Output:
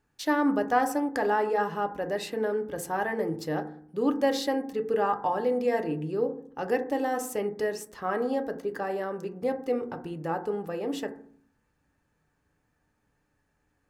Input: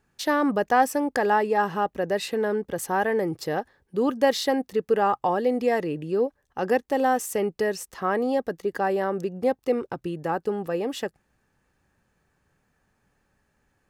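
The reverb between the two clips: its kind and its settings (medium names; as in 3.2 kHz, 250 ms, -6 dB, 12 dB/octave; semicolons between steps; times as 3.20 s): FDN reverb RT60 0.56 s, low-frequency decay 1.55×, high-frequency decay 0.3×, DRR 5.5 dB; trim -5.5 dB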